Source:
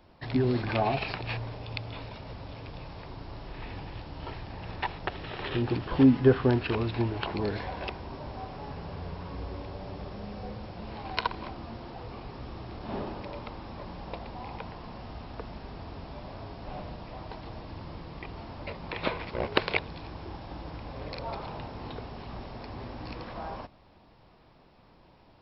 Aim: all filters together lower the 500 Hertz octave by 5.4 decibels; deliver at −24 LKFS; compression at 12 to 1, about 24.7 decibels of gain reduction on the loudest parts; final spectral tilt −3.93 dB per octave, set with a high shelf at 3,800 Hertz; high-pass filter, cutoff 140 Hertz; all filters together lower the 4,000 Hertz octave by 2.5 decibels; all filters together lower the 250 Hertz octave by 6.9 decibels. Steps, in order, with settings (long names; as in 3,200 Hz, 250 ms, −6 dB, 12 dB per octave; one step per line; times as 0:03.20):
high-pass filter 140 Hz
parametric band 250 Hz −6 dB
parametric band 500 Hz −5 dB
high-shelf EQ 3,800 Hz +7 dB
parametric band 4,000 Hz −7.5 dB
downward compressor 12 to 1, threshold −47 dBFS
level +27 dB